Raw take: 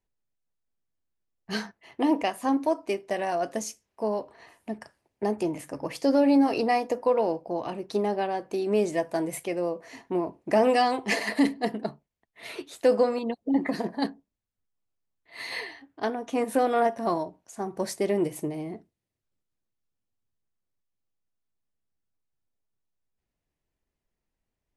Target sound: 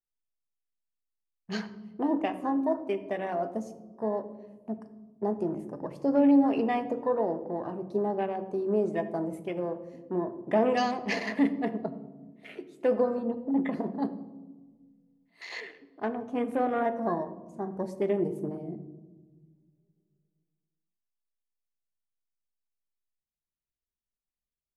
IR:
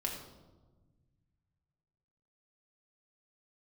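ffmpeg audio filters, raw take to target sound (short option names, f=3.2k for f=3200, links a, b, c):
-filter_complex "[0:a]afwtdn=0.0126,asplit=2[a][b];[b]equalizer=f=3.9k:t=o:w=0.22:g=-4.5[c];[1:a]atrim=start_sample=2205,lowshelf=f=290:g=9.5[d];[c][d]afir=irnorm=-1:irlink=0,volume=-7.5dB[e];[a][e]amix=inputs=2:normalize=0,volume=-7dB"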